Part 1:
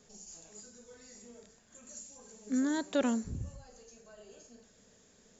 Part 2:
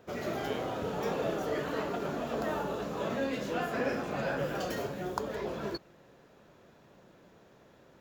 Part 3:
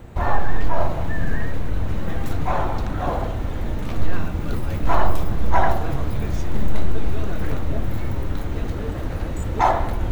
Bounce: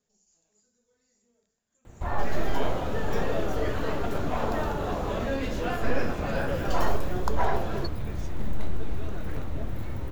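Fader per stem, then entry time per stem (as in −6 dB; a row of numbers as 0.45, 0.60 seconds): −18.0, +2.5, −8.5 decibels; 0.00, 2.10, 1.85 seconds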